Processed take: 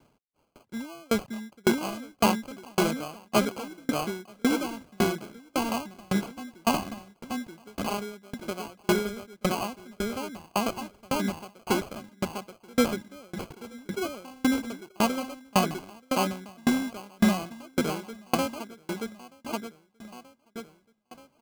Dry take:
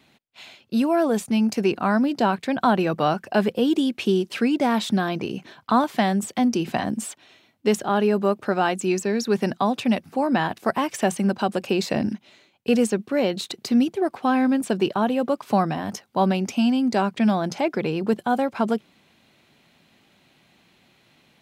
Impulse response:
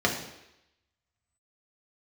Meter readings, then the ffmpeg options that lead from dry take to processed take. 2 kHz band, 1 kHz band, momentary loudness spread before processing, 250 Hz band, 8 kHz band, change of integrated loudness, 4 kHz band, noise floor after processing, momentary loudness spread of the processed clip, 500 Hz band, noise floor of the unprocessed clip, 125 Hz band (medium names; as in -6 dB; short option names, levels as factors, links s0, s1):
-4.5 dB, -7.5 dB, 5 LU, -7.5 dB, -1.5 dB, -7.0 dB, -3.0 dB, -68 dBFS, 14 LU, -8.0 dB, -61 dBFS, -6.5 dB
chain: -af "acrusher=samples=24:mix=1:aa=0.000001,aecho=1:1:930|1860|2790|3720:0.631|0.202|0.0646|0.0207,aeval=exprs='val(0)*pow(10,-35*if(lt(mod(1.8*n/s,1),2*abs(1.8)/1000),1-mod(1.8*n/s,1)/(2*abs(1.8)/1000),(mod(1.8*n/s,1)-2*abs(1.8)/1000)/(1-2*abs(1.8)/1000))/20)':c=same"